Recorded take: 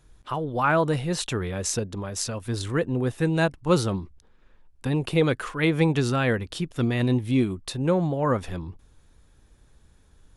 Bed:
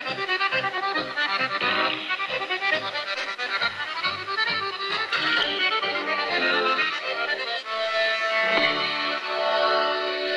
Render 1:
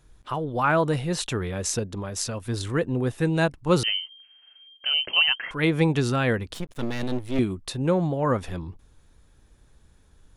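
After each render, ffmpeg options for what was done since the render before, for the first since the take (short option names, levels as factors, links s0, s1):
-filter_complex "[0:a]asettb=1/sr,asplit=3[s0][s1][s2];[s0]atrim=end=3.834[s3];[s1]atrim=start=3.83:end=5.51,asetpts=PTS-STARTPTS,afade=t=in:d=0.004:c=qsin,afade=t=out:st=1.676:d=0.004:c=qsin,lowpass=f=2700:t=q:w=0.5098,lowpass=f=2700:t=q:w=0.6013,lowpass=f=2700:t=q:w=0.9,lowpass=f=2700:t=q:w=2.563,afreqshift=-3200[s4];[s2]atrim=start=5.506[s5];[s3][s4]acrossfade=d=0.004:c1=hsin:c2=qsin[s6];[s6][s5]acrossfade=d=0.004:c1=qsin:c2=hsin,asettb=1/sr,asplit=3[s7][s8][s9];[s7]atrim=end=6.544[s10];[s8]atrim=start=6.54:end=7.39,asetpts=PTS-STARTPTS,afade=t=in:d=0.004:c=qsin,afade=t=out:st=0.846:d=0.004:c=qsin,aeval=exprs='max(val(0),0)':c=same[s11];[s9]atrim=start=7.386[s12];[s10][s11]acrossfade=d=0.004:c1=hsin:c2=qsin[s13];[s13][s12]acrossfade=d=0.004:c1=qsin:c2=hsin"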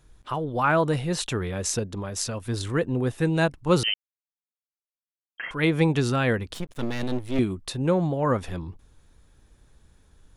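-filter_complex "[0:a]asplit=3[s0][s1][s2];[s0]atrim=end=3.94,asetpts=PTS-STARTPTS,afade=t=out:st=3.936:d=0.004:c=hsin[s3];[s1]atrim=start=3.94:end=5.38,asetpts=PTS-STARTPTS,volume=0[s4];[s2]atrim=start=5.38,asetpts=PTS-STARTPTS,afade=t=in:d=0.004:c=hsin[s5];[s3][s4][s5]concat=n=3:v=0:a=1"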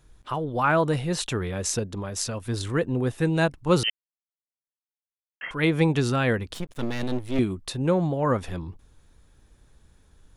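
-filter_complex "[0:a]asplit=3[s0][s1][s2];[s0]atrim=end=3.9,asetpts=PTS-STARTPTS,afade=t=out:st=3.896:d=0.004:c=hsin[s3];[s1]atrim=start=3.9:end=5.41,asetpts=PTS-STARTPTS,volume=0[s4];[s2]atrim=start=5.41,asetpts=PTS-STARTPTS,afade=t=in:d=0.004:c=hsin[s5];[s3][s4][s5]concat=n=3:v=0:a=1"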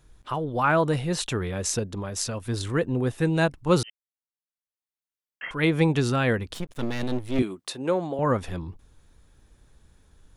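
-filter_complex "[0:a]asettb=1/sr,asplit=3[s0][s1][s2];[s0]atrim=end=7.424[s3];[s1]atrim=start=7.42:end=8.19,asetpts=PTS-STARTPTS,afade=t=in:d=0.004:c=qsin,afade=t=out:st=0.766:d=0.004:c=qsin,highpass=300[s4];[s2]atrim=start=8.186[s5];[s3][s4]acrossfade=d=0.004:c1=hsin:c2=qsin[s6];[s6][s5]acrossfade=d=0.004:c1=qsin:c2=hsin,asplit=2[s7][s8];[s7]atrim=end=3.83,asetpts=PTS-STARTPTS,afade=t=out:st=3.826:d=0.004:c=hsin:silence=0.0794328[s9];[s8]atrim=start=3.83,asetpts=PTS-STARTPTS,afade=t=in:d=1.66:silence=0.0794328[s10];[s9][s10]concat=n=2:v=0:a=1"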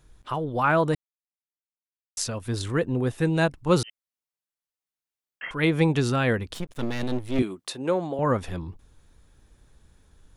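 -filter_complex "[0:a]asplit=3[s0][s1][s2];[s0]atrim=end=0.95,asetpts=PTS-STARTPTS,afade=t=out:st=0.946:d=0.004:c=hsin[s3];[s1]atrim=start=0.95:end=2.17,asetpts=PTS-STARTPTS,volume=0[s4];[s2]atrim=start=2.17,asetpts=PTS-STARTPTS,afade=t=in:d=0.004:c=hsin[s5];[s3][s4][s5]concat=n=3:v=0:a=1"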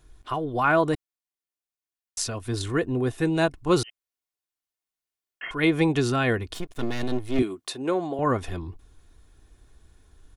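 -af "aecho=1:1:2.8:0.41"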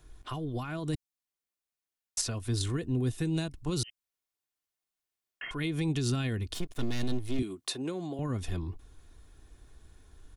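-filter_complex "[0:a]alimiter=limit=0.141:level=0:latency=1:release=94,acrossover=split=260|3000[s0][s1][s2];[s1]acompressor=threshold=0.00891:ratio=6[s3];[s0][s3][s2]amix=inputs=3:normalize=0"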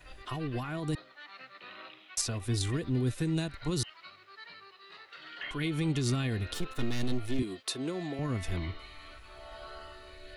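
-filter_complex "[1:a]volume=0.0562[s0];[0:a][s0]amix=inputs=2:normalize=0"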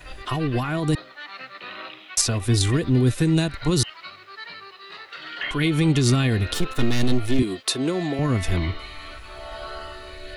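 -af "volume=3.55"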